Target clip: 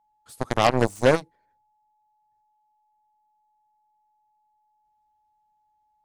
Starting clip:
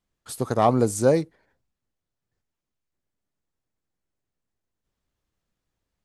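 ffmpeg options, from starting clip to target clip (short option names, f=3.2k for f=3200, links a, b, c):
-af "aeval=exprs='val(0)+0.00141*sin(2*PI*850*n/s)':c=same,aeval=exprs='0.501*(cos(1*acos(clip(val(0)/0.501,-1,1)))-cos(1*PI/2))+0.0631*(cos(5*acos(clip(val(0)/0.501,-1,1)))-cos(5*PI/2))+0.141*(cos(7*acos(clip(val(0)/0.501,-1,1)))-cos(7*PI/2))':c=same"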